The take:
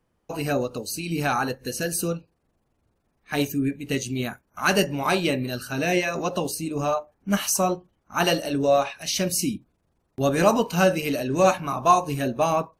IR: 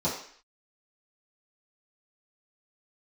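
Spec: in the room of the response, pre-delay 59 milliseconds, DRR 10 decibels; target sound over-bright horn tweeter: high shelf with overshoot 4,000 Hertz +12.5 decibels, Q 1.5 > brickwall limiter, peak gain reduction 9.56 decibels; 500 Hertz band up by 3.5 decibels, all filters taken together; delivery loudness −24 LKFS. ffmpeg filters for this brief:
-filter_complex "[0:a]equalizer=frequency=500:width_type=o:gain=4.5,asplit=2[link_01][link_02];[1:a]atrim=start_sample=2205,adelay=59[link_03];[link_02][link_03]afir=irnorm=-1:irlink=0,volume=-20dB[link_04];[link_01][link_04]amix=inputs=2:normalize=0,highshelf=frequency=4000:width_type=q:width=1.5:gain=12.5,volume=-4dB,alimiter=limit=-11dB:level=0:latency=1"

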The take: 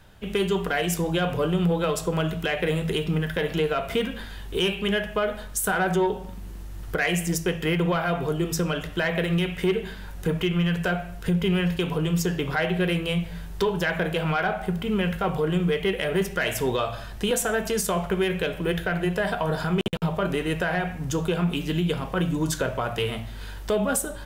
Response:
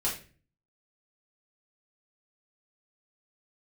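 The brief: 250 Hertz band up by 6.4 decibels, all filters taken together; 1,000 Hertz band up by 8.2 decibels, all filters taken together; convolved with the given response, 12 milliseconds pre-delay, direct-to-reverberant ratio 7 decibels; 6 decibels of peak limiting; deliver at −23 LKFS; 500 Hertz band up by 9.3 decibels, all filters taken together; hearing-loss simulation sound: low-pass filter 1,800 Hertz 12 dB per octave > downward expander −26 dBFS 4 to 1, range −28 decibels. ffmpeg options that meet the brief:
-filter_complex "[0:a]equalizer=frequency=250:width_type=o:gain=8,equalizer=frequency=500:width_type=o:gain=7,equalizer=frequency=1000:width_type=o:gain=8.5,alimiter=limit=-10.5dB:level=0:latency=1,asplit=2[link_01][link_02];[1:a]atrim=start_sample=2205,adelay=12[link_03];[link_02][link_03]afir=irnorm=-1:irlink=0,volume=-13.5dB[link_04];[link_01][link_04]amix=inputs=2:normalize=0,lowpass=1800,agate=range=-28dB:threshold=-26dB:ratio=4,volume=-3dB"

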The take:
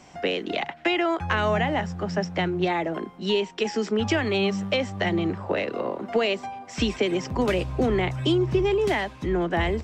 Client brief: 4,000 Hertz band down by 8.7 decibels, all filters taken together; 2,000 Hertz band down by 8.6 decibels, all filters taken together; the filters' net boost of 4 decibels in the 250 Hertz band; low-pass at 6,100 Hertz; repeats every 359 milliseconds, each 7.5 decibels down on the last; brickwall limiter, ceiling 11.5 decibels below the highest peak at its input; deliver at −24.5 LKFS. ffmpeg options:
ffmpeg -i in.wav -af "lowpass=6100,equalizer=frequency=250:width_type=o:gain=6,equalizer=frequency=2000:width_type=o:gain=-8.5,equalizer=frequency=4000:width_type=o:gain=-8,alimiter=limit=-19.5dB:level=0:latency=1,aecho=1:1:359|718|1077|1436|1795:0.422|0.177|0.0744|0.0312|0.0131,volume=3dB" out.wav

